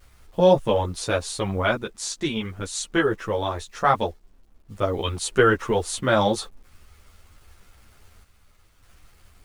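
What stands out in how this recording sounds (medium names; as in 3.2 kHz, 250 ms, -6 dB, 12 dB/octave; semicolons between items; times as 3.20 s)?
a quantiser's noise floor 10-bit, dither none; random-step tremolo 1.7 Hz; a shimmering, thickened sound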